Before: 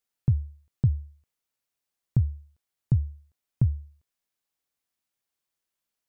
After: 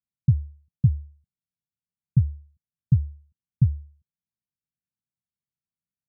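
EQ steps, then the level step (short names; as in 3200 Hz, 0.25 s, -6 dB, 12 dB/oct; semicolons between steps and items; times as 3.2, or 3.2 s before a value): HPF 55 Hz; ladder low-pass 210 Hz, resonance 40%; +8.5 dB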